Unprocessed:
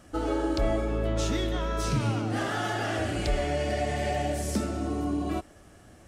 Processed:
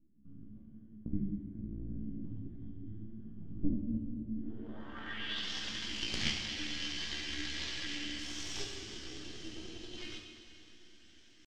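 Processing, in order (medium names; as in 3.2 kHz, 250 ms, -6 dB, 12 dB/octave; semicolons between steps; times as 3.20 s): elliptic band-stop 170–1800 Hz, stop band 50 dB; Chebyshev shaper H 2 -22 dB, 3 -11 dB, 8 -42 dB, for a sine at -15.5 dBFS; resonant low shelf 100 Hz -13.5 dB, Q 1.5; in parallel at +2 dB: compression, threshold -50 dBFS, peak gain reduction 18.5 dB; on the sum: full-wave rectifier; tempo 0.53×; graphic EQ with 31 bands 200 Hz +5 dB, 315 Hz +5 dB, 3.15 kHz +11 dB, 10 kHz -9 dB; low-pass sweep 200 Hz -> 5.4 kHz, 4.31–5.49 s; echo that smears into a reverb 505 ms, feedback 49%, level -14 dB; gated-style reverb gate 470 ms falling, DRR 2.5 dB; trim +3 dB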